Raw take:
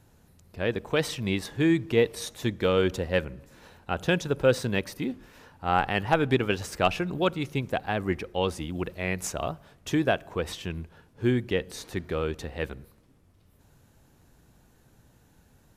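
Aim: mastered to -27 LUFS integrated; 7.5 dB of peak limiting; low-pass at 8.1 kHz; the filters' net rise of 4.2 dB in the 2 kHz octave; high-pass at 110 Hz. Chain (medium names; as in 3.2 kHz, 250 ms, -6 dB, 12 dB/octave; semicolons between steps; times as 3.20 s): high-pass 110 Hz; low-pass 8.1 kHz; peaking EQ 2 kHz +5.5 dB; trim +1.5 dB; peak limiter -10 dBFS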